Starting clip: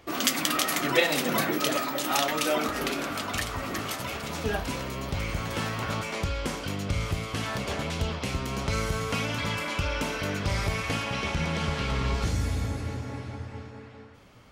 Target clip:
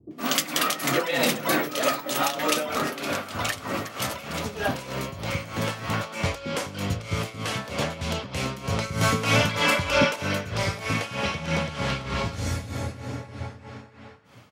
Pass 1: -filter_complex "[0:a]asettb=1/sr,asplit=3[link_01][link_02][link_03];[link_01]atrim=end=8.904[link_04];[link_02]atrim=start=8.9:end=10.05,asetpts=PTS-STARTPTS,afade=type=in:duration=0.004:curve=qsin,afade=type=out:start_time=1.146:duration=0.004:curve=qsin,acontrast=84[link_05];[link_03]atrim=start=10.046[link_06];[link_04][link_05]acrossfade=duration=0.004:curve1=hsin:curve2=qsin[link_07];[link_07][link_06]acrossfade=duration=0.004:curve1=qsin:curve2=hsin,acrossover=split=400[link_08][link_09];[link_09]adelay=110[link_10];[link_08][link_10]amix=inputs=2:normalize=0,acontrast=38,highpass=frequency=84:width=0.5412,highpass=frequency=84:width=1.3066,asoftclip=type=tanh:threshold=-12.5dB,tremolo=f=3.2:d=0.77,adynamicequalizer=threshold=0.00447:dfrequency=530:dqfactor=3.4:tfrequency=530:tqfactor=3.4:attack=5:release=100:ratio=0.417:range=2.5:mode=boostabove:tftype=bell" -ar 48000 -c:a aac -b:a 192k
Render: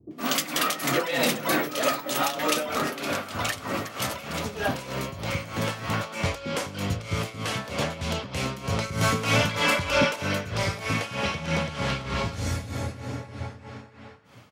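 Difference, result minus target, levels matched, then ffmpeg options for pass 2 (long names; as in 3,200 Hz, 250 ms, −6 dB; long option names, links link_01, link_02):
soft clipping: distortion +12 dB
-filter_complex "[0:a]asettb=1/sr,asplit=3[link_01][link_02][link_03];[link_01]atrim=end=8.904[link_04];[link_02]atrim=start=8.9:end=10.05,asetpts=PTS-STARTPTS,afade=type=in:duration=0.004:curve=qsin,afade=type=out:start_time=1.146:duration=0.004:curve=qsin,acontrast=84[link_05];[link_03]atrim=start=10.046[link_06];[link_04][link_05]acrossfade=duration=0.004:curve1=hsin:curve2=qsin[link_07];[link_07][link_06]acrossfade=duration=0.004:curve1=qsin:curve2=hsin,acrossover=split=400[link_08][link_09];[link_09]adelay=110[link_10];[link_08][link_10]amix=inputs=2:normalize=0,acontrast=38,highpass=frequency=84:width=0.5412,highpass=frequency=84:width=1.3066,asoftclip=type=tanh:threshold=-4dB,tremolo=f=3.2:d=0.77,adynamicequalizer=threshold=0.00447:dfrequency=530:dqfactor=3.4:tfrequency=530:tqfactor=3.4:attack=5:release=100:ratio=0.417:range=2.5:mode=boostabove:tftype=bell" -ar 48000 -c:a aac -b:a 192k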